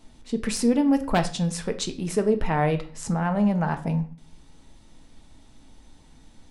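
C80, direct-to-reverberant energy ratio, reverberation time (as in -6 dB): 18.0 dB, 7.0 dB, 0.40 s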